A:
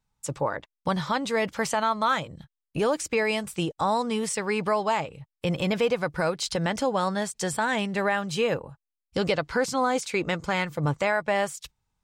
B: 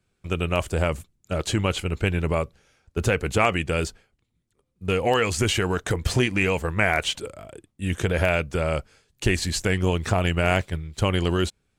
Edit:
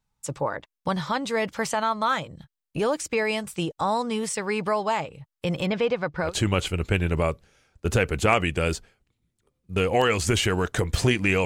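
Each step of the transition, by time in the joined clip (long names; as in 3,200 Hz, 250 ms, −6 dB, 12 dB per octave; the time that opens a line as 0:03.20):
A
0:05.66–0:06.35: low-pass filter 4,200 Hz 12 dB per octave
0:06.28: continue with B from 0:01.40, crossfade 0.14 s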